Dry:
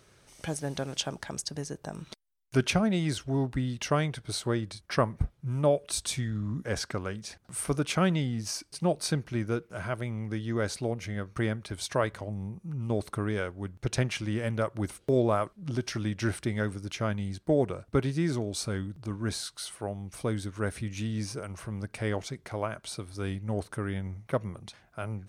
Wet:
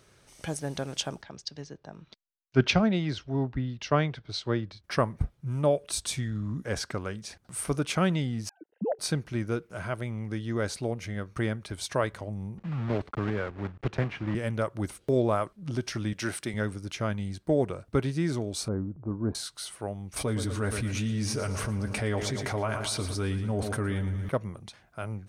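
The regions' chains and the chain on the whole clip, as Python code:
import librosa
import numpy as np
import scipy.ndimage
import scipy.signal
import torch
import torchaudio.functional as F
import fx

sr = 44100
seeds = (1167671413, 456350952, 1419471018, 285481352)

y = fx.chain(x, sr, fx.lowpass(hz=5100.0, slope=24),
    fx.band_widen(depth_pct=70), at=(1.22, 4.84))
y = fx.chain(y, sr, fx.sine_speech(),
    fx.moving_average(points=38), at=(8.49, 8.99))
y = fx.chain(y, sr, fx.block_float(bits=3),
    fx.lowpass(hz=2000.0, slope=12),
    fx.band_squash(depth_pct=40), at=(12.58, 14.35))
y = fx.chain(y, sr, fx.highpass(hz=110.0, slope=12),
    fx.tilt_eq(slope=1.5), at=(16.13, 16.54))
y = fx.chain(y, sr, fx.lowpass(hz=1100.0, slope=24),
    fx.peak_eq(hz=290.0, db=4.0, octaves=1.6), at=(18.68, 19.35))
y = fx.chain(y, sr, fx.notch_comb(f0_hz=170.0),
    fx.echo_feedback(ms=115, feedback_pct=53, wet_db=-13),
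    fx.env_flatten(amount_pct=70), at=(20.16, 24.29))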